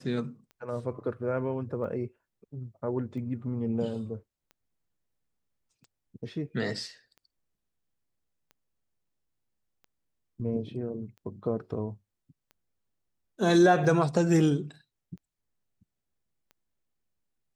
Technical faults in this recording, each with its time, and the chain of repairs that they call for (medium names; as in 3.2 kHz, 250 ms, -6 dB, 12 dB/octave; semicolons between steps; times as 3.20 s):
tick 45 rpm -37 dBFS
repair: de-click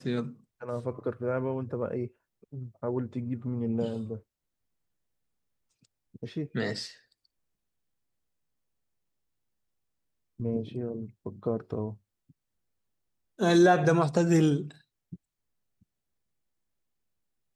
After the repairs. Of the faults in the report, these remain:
nothing left